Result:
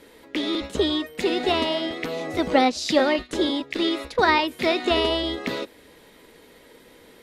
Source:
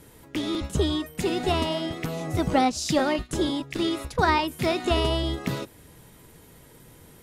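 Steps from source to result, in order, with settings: graphic EQ 125/250/500/1000/2000/4000 Hz -10/+8/+11/+4/+10/+11 dB; gain -7 dB

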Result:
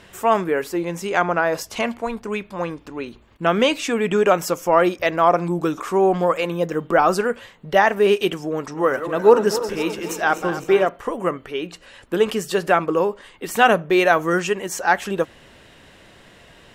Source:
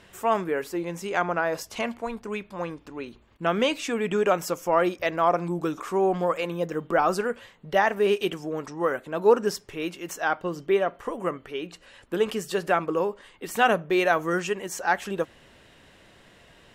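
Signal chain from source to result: 8.56–10.89 regenerating reverse delay 0.13 s, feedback 75%, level -11 dB; gain +6 dB

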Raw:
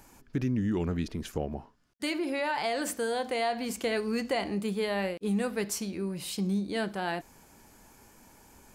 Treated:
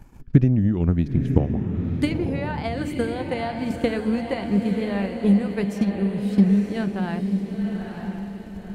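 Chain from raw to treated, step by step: tone controls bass +14 dB, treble -9 dB; transient shaper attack +10 dB, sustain -4 dB; diffused feedback echo 0.959 s, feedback 43%, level -5.5 dB; gain -1.5 dB

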